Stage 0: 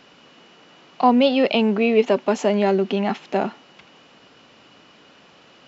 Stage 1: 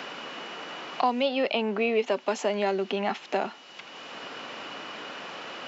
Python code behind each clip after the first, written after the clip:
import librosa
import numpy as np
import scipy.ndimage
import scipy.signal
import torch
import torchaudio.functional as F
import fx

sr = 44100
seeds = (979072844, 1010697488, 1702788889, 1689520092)

y = fx.highpass(x, sr, hz=610.0, slope=6)
y = fx.band_squash(y, sr, depth_pct=70)
y = y * 10.0 ** (-3.0 / 20.0)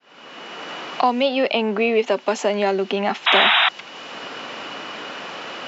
y = fx.fade_in_head(x, sr, length_s=0.71)
y = fx.spec_paint(y, sr, seeds[0], shape='noise', start_s=3.26, length_s=0.43, low_hz=640.0, high_hz=3900.0, level_db=-22.0)
y = y * 10.0 ** (6.5 / 20.0)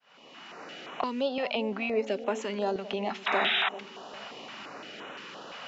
y = fx.echo_bbd(x, sr, ms=395, stages=2048, feedback_pct=57, wet_db=-12.0)
y = fx.filter_held_notch(y, sr, hz=5.8, low_hz=330.0, high_hz=4700.0)
y = y * 10.0 ** (-9.0 / 20.0)